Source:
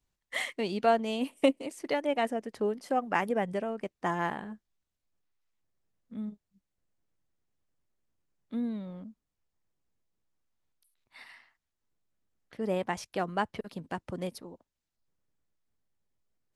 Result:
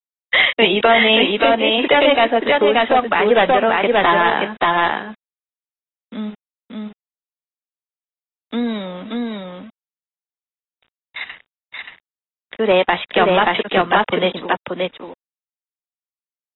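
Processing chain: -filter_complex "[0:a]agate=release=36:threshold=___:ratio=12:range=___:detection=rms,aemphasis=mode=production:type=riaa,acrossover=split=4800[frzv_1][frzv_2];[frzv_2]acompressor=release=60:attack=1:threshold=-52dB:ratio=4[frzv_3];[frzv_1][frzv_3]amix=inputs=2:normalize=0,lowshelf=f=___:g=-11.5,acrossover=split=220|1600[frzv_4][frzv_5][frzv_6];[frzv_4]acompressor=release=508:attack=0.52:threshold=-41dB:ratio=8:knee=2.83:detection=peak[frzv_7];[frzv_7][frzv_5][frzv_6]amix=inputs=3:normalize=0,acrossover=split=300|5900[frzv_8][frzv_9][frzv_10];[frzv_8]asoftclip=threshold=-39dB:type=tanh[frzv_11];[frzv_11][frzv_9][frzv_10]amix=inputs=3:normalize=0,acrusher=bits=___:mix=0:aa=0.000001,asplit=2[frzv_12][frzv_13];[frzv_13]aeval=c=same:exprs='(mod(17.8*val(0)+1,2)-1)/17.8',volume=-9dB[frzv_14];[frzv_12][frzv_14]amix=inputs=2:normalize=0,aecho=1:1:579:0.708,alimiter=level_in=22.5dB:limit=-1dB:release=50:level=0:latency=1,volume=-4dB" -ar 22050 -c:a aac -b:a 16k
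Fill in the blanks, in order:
-51dB, -12dB, 110, 9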